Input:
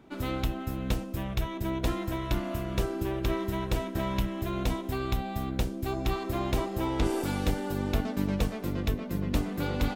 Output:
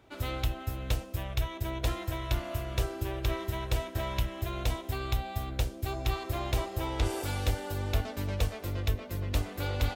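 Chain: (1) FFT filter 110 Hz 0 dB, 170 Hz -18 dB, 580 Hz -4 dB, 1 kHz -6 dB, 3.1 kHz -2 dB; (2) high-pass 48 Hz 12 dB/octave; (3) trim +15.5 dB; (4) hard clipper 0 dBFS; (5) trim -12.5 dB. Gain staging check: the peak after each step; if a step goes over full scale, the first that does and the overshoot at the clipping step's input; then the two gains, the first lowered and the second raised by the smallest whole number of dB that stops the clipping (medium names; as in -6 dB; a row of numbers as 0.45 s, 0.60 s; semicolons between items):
-16.5 dBFS, -18.5 dBFS, -3.0 dBFS, -3.0 dBFS, -15.5 dBFS; nothing clips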